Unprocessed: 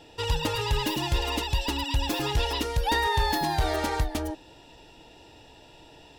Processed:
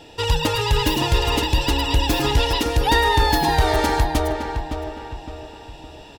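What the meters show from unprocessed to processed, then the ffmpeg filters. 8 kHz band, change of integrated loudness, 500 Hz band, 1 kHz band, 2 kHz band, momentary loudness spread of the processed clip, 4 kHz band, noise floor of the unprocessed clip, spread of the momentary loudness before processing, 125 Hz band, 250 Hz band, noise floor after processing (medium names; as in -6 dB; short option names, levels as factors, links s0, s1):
+7.0 dB, +7.5 dB, +8.5 dB, +8.0 dB, +7.5 dB, 17 LU, +7.5 dB, -52 dBFS, 5 LU, +8.0 dB, +8.0 dB, -42 dBFS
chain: -filter_complex "[0:a]asplit=2[s0][s1];[s1]adelay=563,lowpass=f=2500:p=1,volume=0.473,asplit=2[s2][s3];[s3]adelay=563,lowpass=f=2500:p=1,volume=0.44,asplit=2[s4][s5];[s5]adelay=563,lowpass=f=2500:p=1,volume=0.44,asplit=2[s6][s7];[s7]adelay=563,lowpass=f=2500:p=1,volume=0.44,asplit=2[s8][s9];[s9]adelay=563,lowpass=f=2500:p=1,volume=0.44[s10];[s0][s2][s4][s6][s8][s10]amix=inputs=6:normalize=0,volume=2.24"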